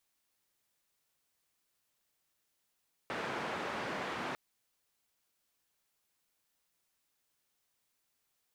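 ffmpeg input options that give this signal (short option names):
-f lavfi -i "anoisesrc=c=white:d=1.25:r=44100:seed=1,highpass=f=150,lowpass=f=1500,volume=-22dB"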